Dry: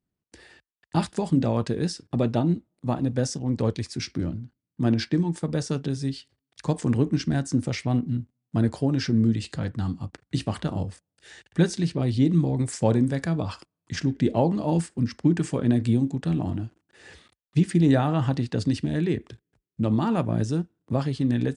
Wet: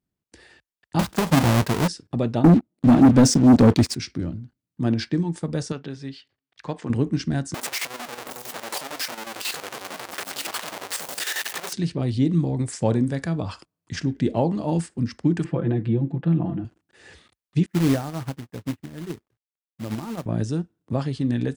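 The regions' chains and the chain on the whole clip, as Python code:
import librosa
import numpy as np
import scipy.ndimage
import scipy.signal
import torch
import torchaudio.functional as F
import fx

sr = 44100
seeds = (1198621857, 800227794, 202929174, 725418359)

y = fx.chain(x, sr, fx.halfwave_hold(),
    fx.peak_eq(hz=940.0, db=4.0, octaves=0.28), at=(0.99, 1.88))
y = fx.chain(y, sr, fx.peak_eq(hz=260.0, db=9.0, octaves=0.93),
    fx.leveller(passes=3), at=(2.44, 3.95))
y = fx.chain(y, sr, fx.lowpass(hz=2400.0, slope=12),
    fx.tilt_eq(slope=3.0), at=(5.72, 6.9))
y = fx.chain(y, sr, fx.clip_1bit(),
    fx.highpass(hz=570.0, slope=12),
    fx.chopper(hz=11.0, depth_pct=65, duty_pct=65), at=(7.54, 11.73))
y = fx.chain(y, sr, fx.highpass(hz=63.0, slope=12),
    fx.air_absorb(metres=460.0),
    fx.comb(ms=5.9, depth=0.95), at=(15.44, 16.65))
y = fx.chain(y, sr, fx.lowpass(hz=2000.0, slope=24),
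    fx.quant_companded(bits=4),
    fx.upward_expand(threshold_db=-37.0, expansion=2.5), at=(17.66, 20.26))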